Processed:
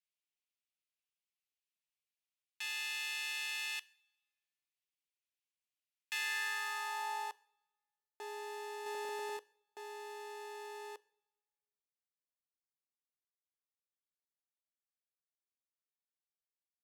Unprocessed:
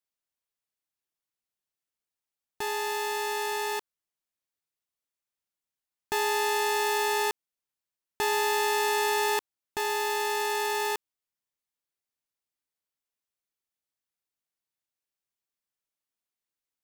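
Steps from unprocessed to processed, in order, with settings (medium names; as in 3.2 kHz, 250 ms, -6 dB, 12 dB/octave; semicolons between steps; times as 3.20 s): differentiator; 8.86–9.37 s: waveshaping leveller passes 2; band-pass sweep 2.5 kHz -> 480 Hz, 6.04–7.72 s; two-slope reverb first 0.58 s, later 1.6 s, from -18 dB, DRR 19.5 dB; trim +9.5 dB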